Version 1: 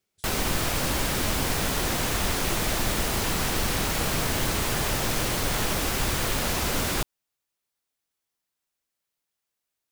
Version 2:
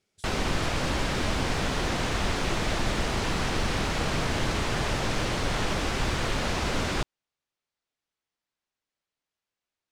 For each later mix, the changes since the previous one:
speech +6.0 dB
background: add high-frequency loss of the air 91 metres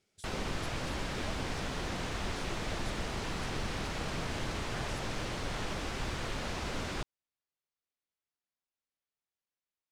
background −9.0 dB

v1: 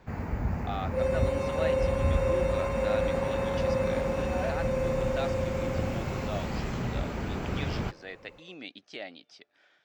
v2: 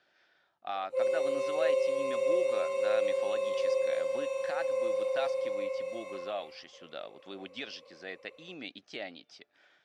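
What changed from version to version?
first sound: muted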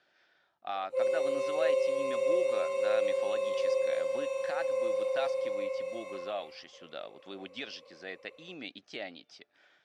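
nothing changed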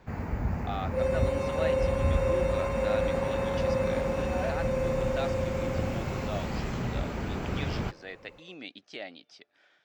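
first sound: unmuted

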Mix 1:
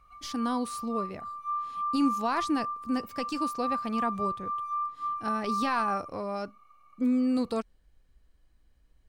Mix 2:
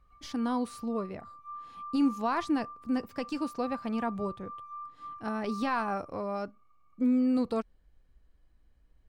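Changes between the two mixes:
background −10.0 dB
master: add high-shelf EQ 3,300 Hz −8.5 dB

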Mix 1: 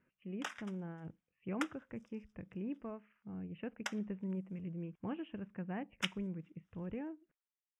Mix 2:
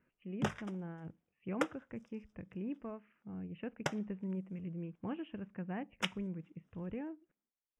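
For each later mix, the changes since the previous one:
background: remove high-pass filter 1,200 Hz 12 dB per octave
reverb: on, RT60 0.30 s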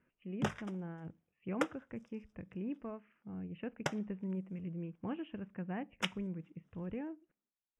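speech: send +6.0 dB

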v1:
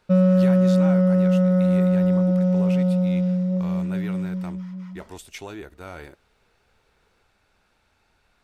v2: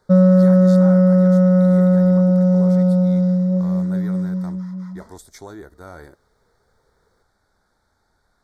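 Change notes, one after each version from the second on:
background +5.0 dB
master: add Butterworth band-reject 2,700 Hz, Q 1.3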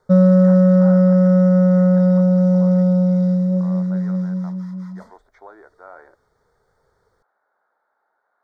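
speech: add flat-topped band-pass 930 Hz, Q 0.8

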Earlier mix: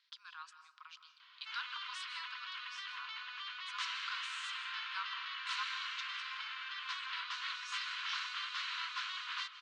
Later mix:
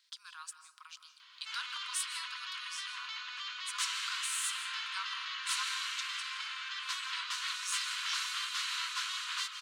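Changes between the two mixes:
background: send +7.0 dB
master: remove Bessel low-pass filter 3,300 Hz, order 4

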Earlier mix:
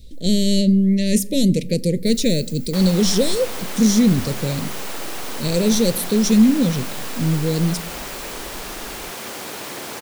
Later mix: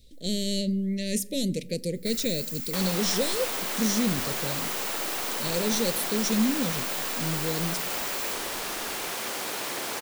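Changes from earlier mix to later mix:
speech −6.5 dB
first sound +7.0 dB
master: add low-shelf EQ 290 Hz −8.5 dB

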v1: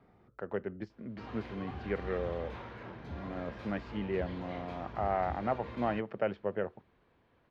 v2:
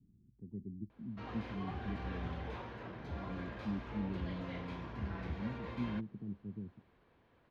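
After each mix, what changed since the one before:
speech: add inverse Chebyshev low-pass filter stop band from 530 Hz, stop band 40 dB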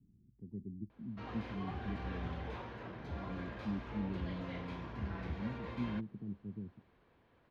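nothing changed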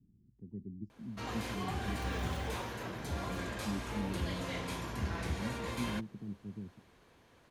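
background +4.5 dB
master: remove high-frequency loss of the air 290 metres

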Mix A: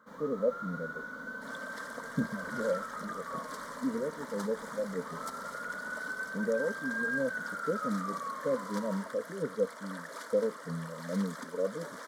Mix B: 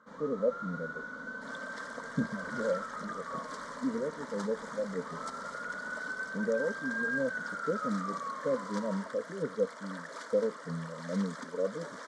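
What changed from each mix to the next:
master: add low-pass filter 8,100 Hz 24 dB per octave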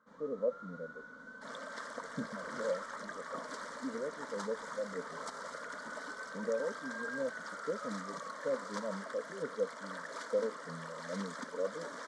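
speech: add spectral tilt +4 dB per octave
first sound −9.5 dB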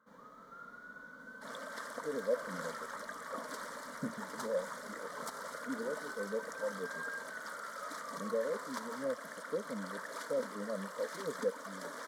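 speech: entry +1.85 s
master: remove low-pass filter 8,100 Hz 24 dB per octave

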